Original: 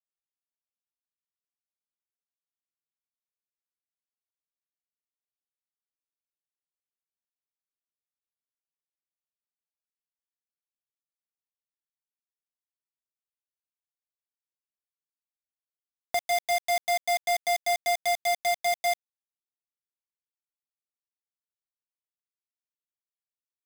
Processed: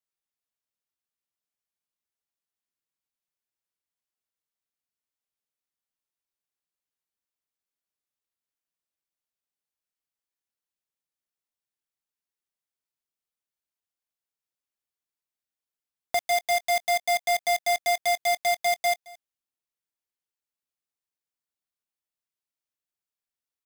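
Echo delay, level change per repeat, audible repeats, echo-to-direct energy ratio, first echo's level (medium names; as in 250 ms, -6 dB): 219 ms, no regular repeats, 1, -22.5 dB, -22.5 dB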